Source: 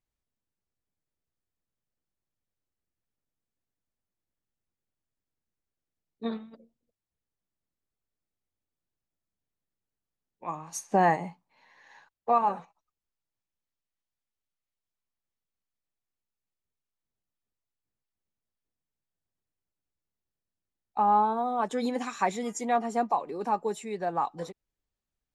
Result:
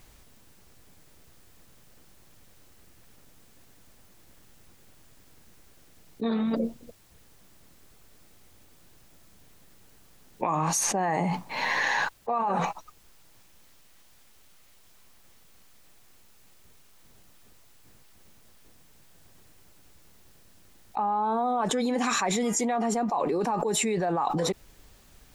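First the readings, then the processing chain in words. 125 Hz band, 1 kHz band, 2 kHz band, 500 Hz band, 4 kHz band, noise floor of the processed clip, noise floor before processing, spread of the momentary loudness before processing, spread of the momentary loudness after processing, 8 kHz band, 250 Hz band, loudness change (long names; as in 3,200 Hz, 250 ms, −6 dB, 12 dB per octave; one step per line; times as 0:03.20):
+7.0 dB, −0.5 dB, +8.0 dB, +2.5 dB, can't be measured, −56 dBFS, below −85 dBFS, 16 LU, 6 LU, +13.0 dB, +5.5 dB, +1.5 dB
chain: envelope flattener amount 100%
level −6.5 dB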